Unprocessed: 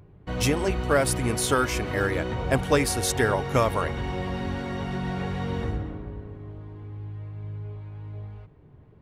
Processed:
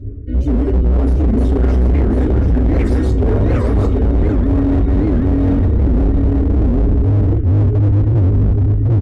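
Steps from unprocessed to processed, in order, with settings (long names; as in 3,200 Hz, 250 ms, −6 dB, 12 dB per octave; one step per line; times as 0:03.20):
time-frequency cells dropped at random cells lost 31%
phaser with its sweep stopped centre 350 Hz, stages 4
brickwall limiter −22 dBFS, peak gain reduction 9 dB
tilt shelving filter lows +5 dB, about 860 Hz
on a send: single-tap delay 741 ms −5.5 dB
on the sum: convolution reverb RT60 0.60 s, pre-delay 4 ms, DRR −9 dB
reversed playback
downward compressor 12 to 1, threshold −26 dBFS, peak gain reduction 19.5 dB
reversed playback
RIAA equalisation playback
automatic gain control gain up to 10.5 dB
hard clipping −13 dBFS, distortion −9 dB
wow of a warped record 78 rpm, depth 250 cents
level +3 dB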